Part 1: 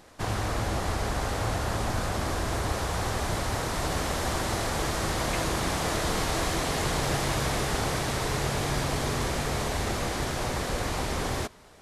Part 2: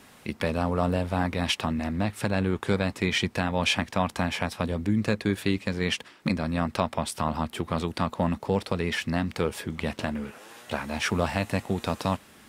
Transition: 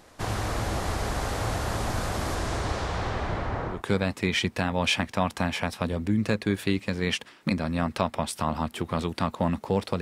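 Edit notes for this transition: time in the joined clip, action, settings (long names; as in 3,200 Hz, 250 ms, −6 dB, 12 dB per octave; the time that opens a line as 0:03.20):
part 1
0:02.35–0:03.83: low-pass filter 11,000 Hz → 1,200 Hz
0:03.75: continue with part 2 from 0:02.54, crossfade 0.16 s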